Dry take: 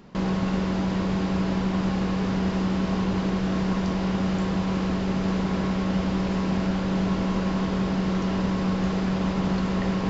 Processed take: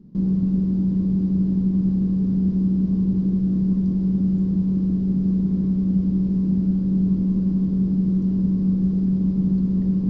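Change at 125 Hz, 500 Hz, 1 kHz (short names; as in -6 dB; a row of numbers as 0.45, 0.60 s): +5.5 dB, -8.5 dB, under -20 dB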